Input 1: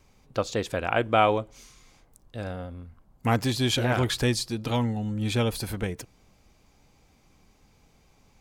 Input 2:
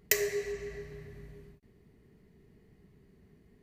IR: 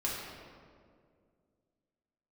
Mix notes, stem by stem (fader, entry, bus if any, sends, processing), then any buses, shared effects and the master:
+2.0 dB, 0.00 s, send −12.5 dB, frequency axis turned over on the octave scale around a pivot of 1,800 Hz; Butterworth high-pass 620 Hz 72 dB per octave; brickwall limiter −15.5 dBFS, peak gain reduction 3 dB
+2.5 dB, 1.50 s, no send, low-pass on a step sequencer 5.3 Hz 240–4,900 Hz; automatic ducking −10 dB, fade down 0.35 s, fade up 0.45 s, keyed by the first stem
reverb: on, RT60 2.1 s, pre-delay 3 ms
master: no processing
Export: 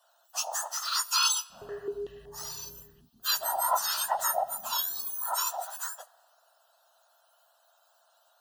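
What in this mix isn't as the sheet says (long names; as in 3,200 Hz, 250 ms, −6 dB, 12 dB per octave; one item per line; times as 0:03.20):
stem 1: send −12.5 dB → −22 dB
master: extra Butterworth band-reject 2,200 Hz, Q 2.2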